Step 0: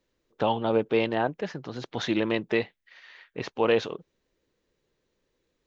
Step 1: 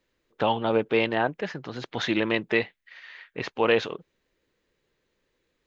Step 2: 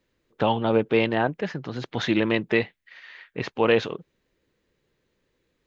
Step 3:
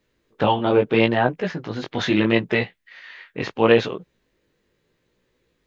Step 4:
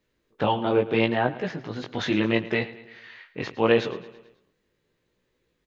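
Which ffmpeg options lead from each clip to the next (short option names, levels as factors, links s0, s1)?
-af "equalizer=f=2000:w=0.82:g=5.5,bandreject=f=5700:w=28"
-af "equalizer=f=120:w=0.41:g=6"
-af "flanger=delay=16:depth=4.6:speed=0.76,volume=2.11"
-af "aecho=1:1:109|218|327|436|545:0.141|0.0763|0.0412|0.0222|0.012,volume=0.596"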